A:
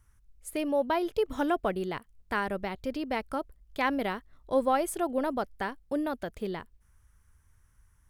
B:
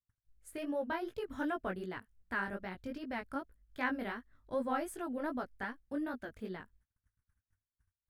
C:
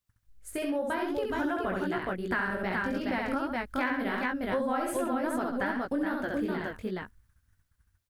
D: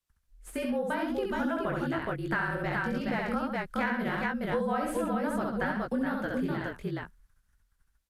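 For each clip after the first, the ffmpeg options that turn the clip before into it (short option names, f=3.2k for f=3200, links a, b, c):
-af "flanger=delay=16:depth=5.5:speed=2.6,agate=range=-32dB:threshold=-60dB:ratio=16:detection=peak,equalizer=f=100:t=o:w=0.67:g=7,equalizer=f=250:t=o:w=0.67:g=7,equalizer=f=1.6k:t=o:w=0.67:g=9,volume=-8.5dB"
-af "dynaudnorm=f=460:g=7:m=4.5dB,aecho=1:1:67|135|421:0.668|0.251|0.631,acompressor=threshold=-36dB:ratio=5,volume=8.5dB"
-filter_complex "[0:a]afreqshift=-40,acrossover=split=160|1100|3400[a][b][c][d];[d]aeval=exprs='clip(val(0),-1,0.00237)':c=same[e];[a][b][c][e]amix=inputs=4:normalize=0" -ar 32000 -c:a libvorbis -b:a 128k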